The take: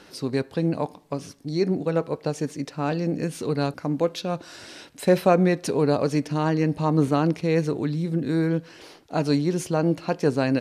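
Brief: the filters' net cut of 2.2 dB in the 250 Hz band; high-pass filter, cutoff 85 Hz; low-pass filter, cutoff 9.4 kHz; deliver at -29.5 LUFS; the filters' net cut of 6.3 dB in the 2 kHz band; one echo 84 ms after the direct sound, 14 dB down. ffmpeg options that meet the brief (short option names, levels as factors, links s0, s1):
-af "highpass=85,lowpass=9400,equalizer=f=250:t=o:g=-3,equalizer=f=2000:t=o:g=-8.5,aecho=1:1:84:0.2,volume=0.668"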